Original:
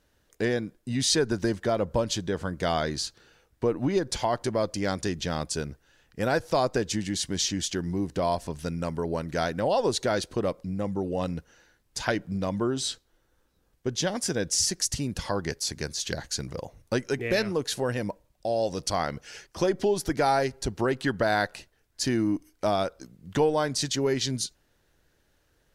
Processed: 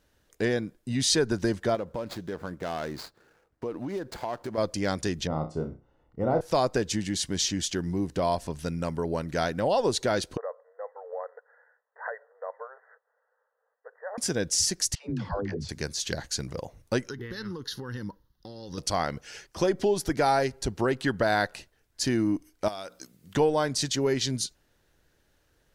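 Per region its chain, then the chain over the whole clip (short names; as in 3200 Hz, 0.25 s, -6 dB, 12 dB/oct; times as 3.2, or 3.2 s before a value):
1.75–4.58 median filter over 15 samples + compressor 5:1, threshold -27 dBFS + low shelf 130 Hz -11.5 dB
5.27–6.41 polynomial smoothing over 65 samples + flutter echo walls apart 5.4 m, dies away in 0.28 s
10.37–14.18 block floating point 7-bit + compressor, threshold -28 dBFS + brick-wall FIR band-pass 430–2000 Hz
14.95–15.69 tape spacing loss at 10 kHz 30 dB + dispersion lows, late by 0.149 s, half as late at 330 Hz
17.09–18.78 compressor 12:1, threshold -28 dBFS + fixed phaser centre 2400 Hz, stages 6
22.68–23.34 tilt +2.5 dB/oct + notches 60/120/180/240/300 Hz + compressor 4:1, threshold -35 dBFS
whole clip: dry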